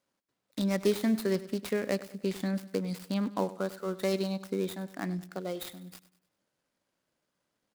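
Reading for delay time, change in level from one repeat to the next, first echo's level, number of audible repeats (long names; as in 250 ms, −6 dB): 99 ms, −7.5 dB, −16.5 dB, 3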